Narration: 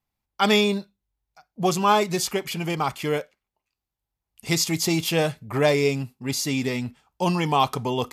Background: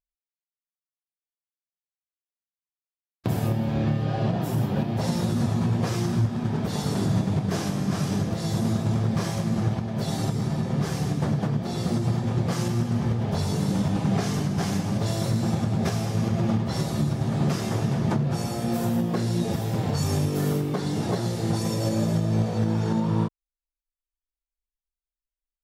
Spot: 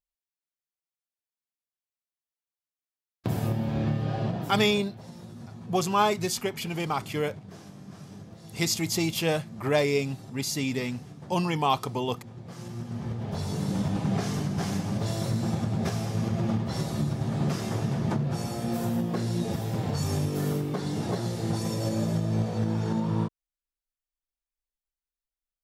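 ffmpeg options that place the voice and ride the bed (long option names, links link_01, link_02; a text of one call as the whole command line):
ffmpeg -i stem1.wav -i stem2.wav -filter_complex "[0:a]adelay=4100,volume=-4dB[link_01];[1:a]volume=12.5dB,afade=type=out:start_time=4.12:duration=0.8:silence=0.158489,afade=type=in:start_time=12.41:duration=1.41:silence=0.16788[link_02];[link_01][link_02]amix=inputs=2:normalize=0" out.wav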